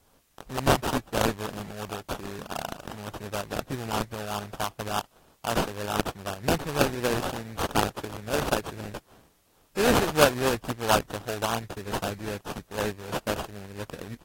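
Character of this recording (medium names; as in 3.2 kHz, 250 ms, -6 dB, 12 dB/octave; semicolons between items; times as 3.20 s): aliases and images of a low sample rate 2.1 kHz, jitter 20%; tremolo saw up 4.1 Hz, depth 40%; a quantiser's noise floor 12-bit, dither triangular; AAC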